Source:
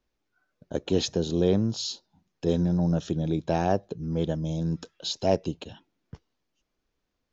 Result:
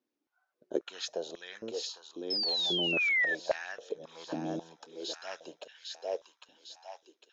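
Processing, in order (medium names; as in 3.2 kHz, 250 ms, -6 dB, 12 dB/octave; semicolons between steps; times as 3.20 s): thinning echo 803 ms, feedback 59%, high-pass 940 Hz, level -4.5 dB; painted sound fall, 2.30–3.35 s, 1.7–5.3 kHz -23 dBFS; step-sequenced high-pass 3.7 Hz 280–1800 Hz; trim -8.5 dB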